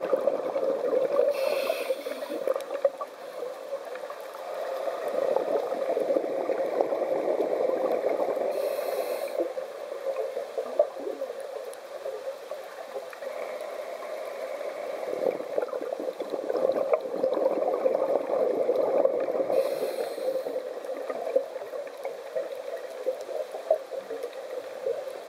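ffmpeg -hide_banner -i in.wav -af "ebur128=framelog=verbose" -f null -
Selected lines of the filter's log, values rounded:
Integrated loudness:
  I:         -29.9 LUFS
  Threshold: -39.9 LUFS
Loudness range:
  LRA:         7.4 LU
  Threshold: -50.0 LUFS
  LRA low:   -34.0 LUFS
  LRA high:  -26.7 LUFS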